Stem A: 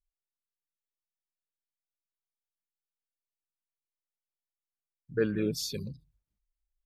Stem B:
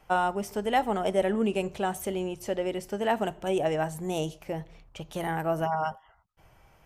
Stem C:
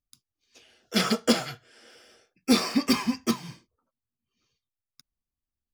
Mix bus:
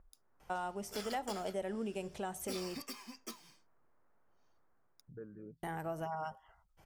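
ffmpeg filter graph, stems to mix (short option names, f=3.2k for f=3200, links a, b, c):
-filter_complex "[0:a]lowpass=f=1.5k:w=0.5412,lowpass=f=1.5k:w=1.3066,acompressor=mode=upward:threshold=-29dB:ratio=2.5,volume=-11dB,afade=t=out:st=4.59:d=0.66:silence=0.316228[a];[1:a]equalizer=f=5.5k:w=0.45:g=5,adelay=400,volume=-4dB,asplit=3[b][c][d];[b]atrim=end=2.82,asetpts=PTS-STARTPTS,afade=t=out:st=2.816:d=0.004:c=hsin[e];[c]atrim=start=2.82:end=5.63,asetpts=PTS-STARTPTS,volume=0[f];[d]atrim=start=5.63,asetpts=PTS-STARTPTS,afade=t=in:d=0.004:c=hsin[g];[e][f][g]concat=n=3:v=0:a=1[h];[2:a]highpass=330,highshelf=f=5.7k:g=9,alimiter=limit=-18dB:level=0:latency=1:release=407,volume=-14.5dB[i];[a][h]amix=inputs=2:normalize=0,equalizer=f=3k:t=o:w=1.4:g=-4.5,acompressor=threshold=-43dB:ratio=2,volume=0dB[j];[i][j]amix=inputs=2:normalize=0"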